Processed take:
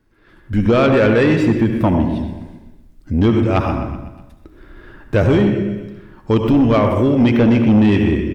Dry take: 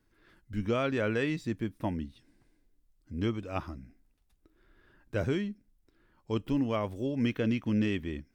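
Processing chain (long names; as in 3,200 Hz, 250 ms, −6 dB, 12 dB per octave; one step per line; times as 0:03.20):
on a send at −7 dB: convolution reverb RT60 0.85 s, pre-delay 65 ms
on the sum: automatic gain control gain up to 12 dB
high-shelf EQ 3,200 Hz −8 dB
repeating echo 125 ms, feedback 53%, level −15.5 dB
soft clipping −14 dBFS, distortion −14 dB
in parallel at 0 dB: downward compressor, threshold −25 dBFS, peak gain reduction 8.5 dB
on the sum: level +4 dB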